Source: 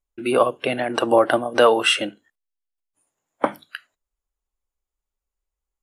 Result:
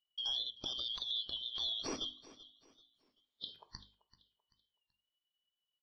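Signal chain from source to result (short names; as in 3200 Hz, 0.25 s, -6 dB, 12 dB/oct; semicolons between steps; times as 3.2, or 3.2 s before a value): four-band scrambler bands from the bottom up 3412; notches 50/100/150/200/250/300 Hz; compressor 4:1, threshold -28 dBFS, peak gain reduction 15.5 dB; limiter -20 dBFS, peak gain reduction 9.5 dB; air absorption 220 m; on a send: feedback echo 0.386 s, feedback 35%, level -18 dB; on the sum: record warp 33 1/3 rpm, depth 100 cents; gain -2.5 dB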